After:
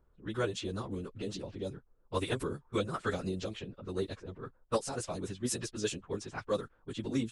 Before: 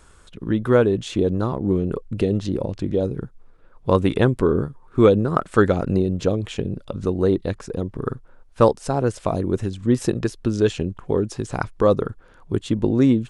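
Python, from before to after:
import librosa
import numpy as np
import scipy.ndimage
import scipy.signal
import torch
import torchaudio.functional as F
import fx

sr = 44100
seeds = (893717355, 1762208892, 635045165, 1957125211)

y = fx.env_lowpass(x, sr, base_hz=520.0, full_db=-16.0)
y = fx.stretch_vocoder_free(y, sr, factor=0.55)
y = scipy.signal.lfilter([1.0, -0.9], [1.0], y)
y = F.gain(torch.from_numpy(y), 6.0).numpy()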